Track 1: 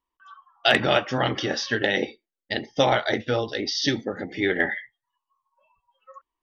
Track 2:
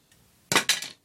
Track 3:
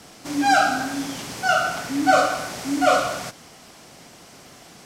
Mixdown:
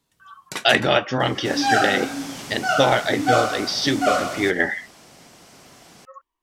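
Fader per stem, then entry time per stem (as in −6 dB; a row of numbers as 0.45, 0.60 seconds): +2.5, −9.0, −2.0 decibels; 0.00, 0.00, 1.20 seconds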